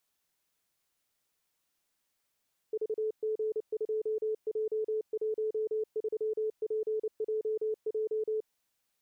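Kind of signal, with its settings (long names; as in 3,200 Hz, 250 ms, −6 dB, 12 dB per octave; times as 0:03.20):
Morse code "VG2J13PJJ" 29 words per minute 434 Hz −28.5 dBFS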